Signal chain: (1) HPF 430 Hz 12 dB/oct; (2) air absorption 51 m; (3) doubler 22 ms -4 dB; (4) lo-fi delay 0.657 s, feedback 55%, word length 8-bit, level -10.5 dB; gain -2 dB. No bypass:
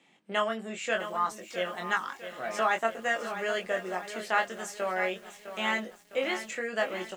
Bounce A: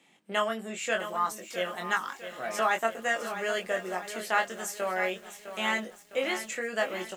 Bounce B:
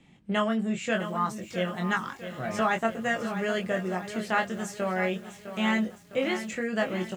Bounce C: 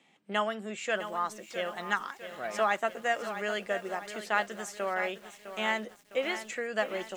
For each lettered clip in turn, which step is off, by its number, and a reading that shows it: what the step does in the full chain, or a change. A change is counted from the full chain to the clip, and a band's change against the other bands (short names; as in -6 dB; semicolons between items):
2, 8 kHz band +4.5 dB; 1, 125 Hz band +14.5 dB; 3, loudness change -1.5 LU